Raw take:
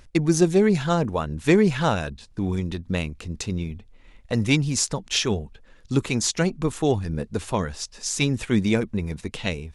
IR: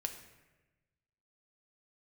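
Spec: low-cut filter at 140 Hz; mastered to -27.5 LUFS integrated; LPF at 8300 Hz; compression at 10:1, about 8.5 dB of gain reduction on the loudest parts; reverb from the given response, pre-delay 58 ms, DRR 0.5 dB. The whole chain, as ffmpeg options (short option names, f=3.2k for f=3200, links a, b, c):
-filter_complex "[0:a]highpass=140,lowpass=8.3k,acompressor=threshold=-22dB:ratio=10,asplit=2[a][b];[1:a]atrim=start_sample=2205,adelay=58[c];[b][c]afir=irnorm=-1:irlink=0,volume=-0.5dB[d];[a][d]amix=inputs=2:normalize=0,volume=-1dB"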